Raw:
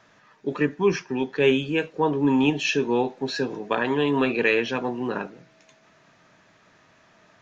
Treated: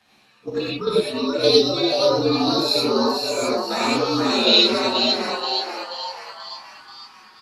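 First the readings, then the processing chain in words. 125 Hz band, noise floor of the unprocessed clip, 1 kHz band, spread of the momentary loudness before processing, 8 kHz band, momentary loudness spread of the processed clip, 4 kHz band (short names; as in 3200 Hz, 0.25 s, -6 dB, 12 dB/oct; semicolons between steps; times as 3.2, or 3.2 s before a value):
-1.5 dB, -58 dBFS, +5.5 dB, 9 LU, n/a, 16 LU, +15.5 dB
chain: inharmonic rescaling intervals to 119%; fifteen-band EQ 100 Hz -5 dB, 1000 Hz +5 dB, 4000 Hz +10 dB; level quantiser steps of 9 dB; frequency-shifting echo 0.482 s, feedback 52%, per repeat +140 Hz, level -4.5 dB; non-linear reverb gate 0.13 s rising, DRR -5 dB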